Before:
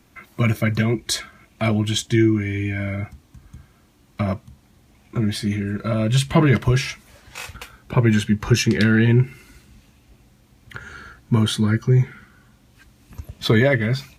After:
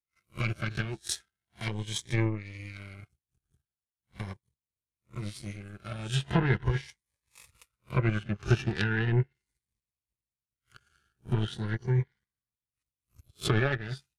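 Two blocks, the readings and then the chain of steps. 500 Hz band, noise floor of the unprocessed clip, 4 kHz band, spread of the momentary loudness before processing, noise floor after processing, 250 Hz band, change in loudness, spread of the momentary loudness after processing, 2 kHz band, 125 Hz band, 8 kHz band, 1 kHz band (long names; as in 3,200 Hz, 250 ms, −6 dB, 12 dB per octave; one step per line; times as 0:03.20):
−12.0 dB, −56 dBFS, −11.5 dB, 19 LU, below −85 dBFS, −15.0 dB, −11.0 dB, 16 LU, −9.5 dB, −10.5 dB, −11.0 dB, −9.0 dB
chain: peak hold with a rise ahead of every peak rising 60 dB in 0.32 s
power curve on the samples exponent 2
treble cut that deepens with the level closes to 2,200 Hz, closed at −20 dBFS
graphic EQ with 15 bands 250 Hz −11 dB, 630 Hz −7 dB, 10,000 Hz +10 dB
phaser whose notches keep moving one way rising 0.39 Hz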